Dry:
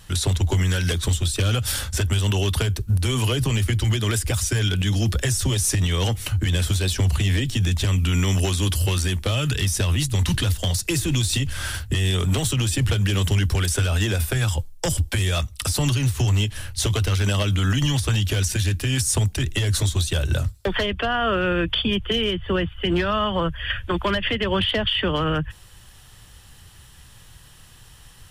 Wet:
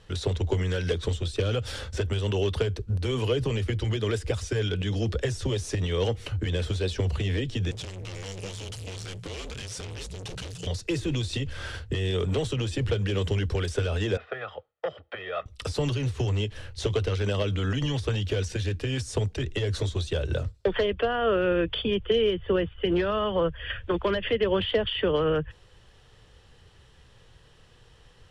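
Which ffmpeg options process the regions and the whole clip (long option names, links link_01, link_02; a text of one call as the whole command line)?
ffmpeg -i in.wav -filter_complex "[0:a]asettb=1/sr,asplit=3[link_01][link_02][link_03];[link_01]atrim=end=7.714[link_04];[link_02]atrim=start=7.71:end=10.67,asetpts=PTS-STARTPTS,afade=type=in:duration=0.004:curve=qsin,afade=type=out:start_time=2.956:duration=0.004:curve=qsin,asoftclip=type=hard:threshold=-30dB,afreqshift=-190,equalizer=frequency=8500:width=0.47:gain=11.5[link_05];[link_03]atrim=start=10.666[link_06];[link_04][link_05]acrossfade=duration=0.004:curve1=hsin:curve2=qsin[link_07];[link_07][link_06]acrossfade=duration=0.004:curve1=qsin:curve2=hsin,asettb=1/sr,asplit=3[link_08][link_09][link_10];[link_08]atrim=end=14.174[link_11];[link_09]atrim=start=14.17:end=15.46,asetpts=PTS-STARTPTS,afade=type=in:duration=0.004:curve=qsin,afade=type=out:start_time=1.286:duration=0.004:curve=qsin,highpass=460,equalizer=frequency=510:width_type=q:width=4:gain=-5,equalizer=frequency=1400:width_type=q:width=4:gain=4,equalizer=frequency=2500:width_type=q:width=4:gain=-5,lowpass=frequency=2700:width=0.5412,lowpass=frequency=2700:width=1.3066,aecho=1:1:1.6:0.57,atrim=end_sample=56889[link_12];[link_10]atrim=start=15.456[link_13];[link_11][link_12]acrossfade=duration=0.004:curve1=hsin:curve2=qsin[link_14];[link_14][link_13]acrossfade=duration=0.004:curve1=qsin:curve2=hsin,lowpass=4800,equalizer=frequency=460:width_type=o:width=0.72:gain=12.5,volume=-7.5dB" out.wav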